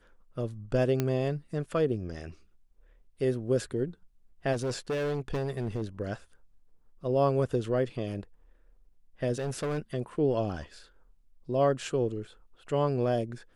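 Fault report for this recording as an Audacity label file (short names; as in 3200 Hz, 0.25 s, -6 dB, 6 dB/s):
1.000000	1.000000	pop -14 dBFS
4.520000	5.830000	clipped -27 dBFS
9.380000	9.790000	clipped -28 dBFS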